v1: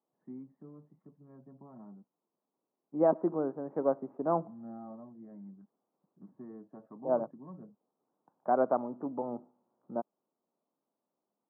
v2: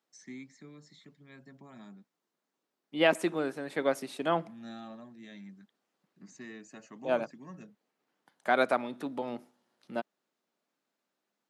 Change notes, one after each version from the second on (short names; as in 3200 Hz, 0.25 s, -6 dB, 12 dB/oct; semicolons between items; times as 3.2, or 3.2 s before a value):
master: remove steep low-pass 1100 Hz 36 dB/oct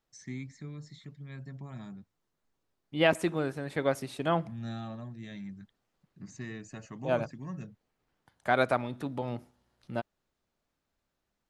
first voice +3.0 dB; master: remove HPF 200 Hz 24 dB/oct